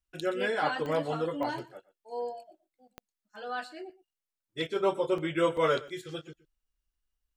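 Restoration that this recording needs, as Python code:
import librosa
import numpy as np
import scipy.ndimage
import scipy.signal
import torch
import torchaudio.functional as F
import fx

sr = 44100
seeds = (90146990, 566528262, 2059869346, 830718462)

y = fx.fix_declick_ar(x, sr, threshold=10.0)
y = fx.fix_interpolate(y, sr, at_s=(5.18, 5.57, 5.88), length_ms=2.6)
y = fx.fix_echo_inverse(y, sr, delay_ms=120, level_db=-19.5)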